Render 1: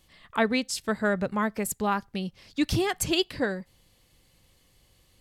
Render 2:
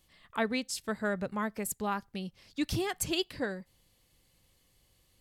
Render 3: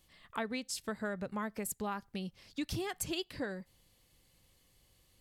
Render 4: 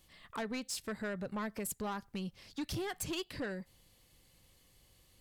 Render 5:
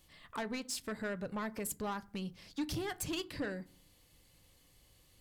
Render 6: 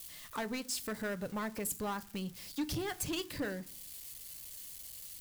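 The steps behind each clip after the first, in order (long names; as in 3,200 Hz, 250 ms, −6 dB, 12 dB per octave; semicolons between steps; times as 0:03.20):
high-shelf EQ 8,700 Hz +5 dB; level −6.5 dB
downward compressor 3 to 1, threshold −35 dBFS, peak gain reduction 8 dB
soft clipping −35 dBFS, distortion −12 dB; level +2.5 dB
feedback delay network reverb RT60 0.41 s, low-frequency decay 1.6×, high-frequency decay 0.45×, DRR 13.5 dB
spike at every zero crossing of −42.5 dBFS; level +1 dB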